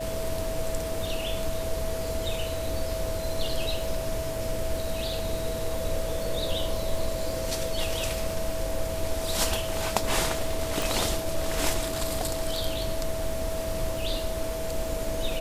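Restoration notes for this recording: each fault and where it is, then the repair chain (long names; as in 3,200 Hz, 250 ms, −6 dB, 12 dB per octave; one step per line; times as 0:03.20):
surface crackle 58 per second −36 dBFS
whistle 650 Hz −32 dBFS
0:10.82: click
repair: click removal
notch filter 650 Hz, Q 30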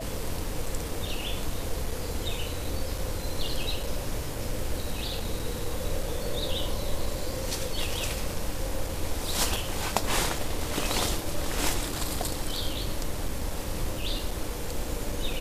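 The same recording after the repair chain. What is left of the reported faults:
0:10.82: click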